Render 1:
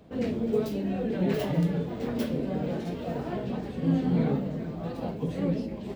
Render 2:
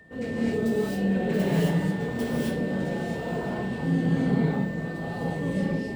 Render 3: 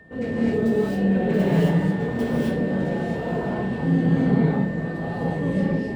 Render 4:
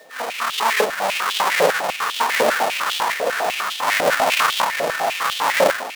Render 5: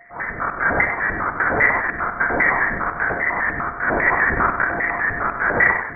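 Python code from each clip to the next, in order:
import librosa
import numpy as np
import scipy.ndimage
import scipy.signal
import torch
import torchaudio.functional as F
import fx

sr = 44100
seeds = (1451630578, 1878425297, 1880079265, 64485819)

y1 = fx.peak_eq(x, sr, hz=8400.0, db=8.5, octaves=0.47)
y1 = y1 + 10.0 ** (-46.0 / 20.0) * np.sin(2.0 * np.pi * 1800.0 * np.arange(len(y1)) / sr)
y1 = fx.rev_gated(y1, sr, seeds[0], gate_ms=290, shape='rising', drr_db=-6.0)
y1 = y1 * 10.0 ** (-4.0 / 20.0)
y2 = fx.high_shelf(y1, sr, hz=3700.0, db=-10.5)
y2 = y2 * 10.0 ** (4.5 / 20.0)
y3 = fx.halfwave_hold(y2, sr)
y3 = fx.tremolo_random(y3, sr, seeds[1], hz=3.5, depth_pct=55)
y3 = fx.filter_held_highpass(y3, sr, hz=10.0, low_hz=570.0, high_hz=3200.0)
y3 = y3 * 10.0 ** (3.0 / 20.0)
y4 = y3 + 10.0 ** (-8.0 / 20.0) * np.pad(y3, (int(97 * sr / 1000.0), 0))[:len(y3)]
y4 = fx.freq_invert(y4, sr, carrier_hz=2500)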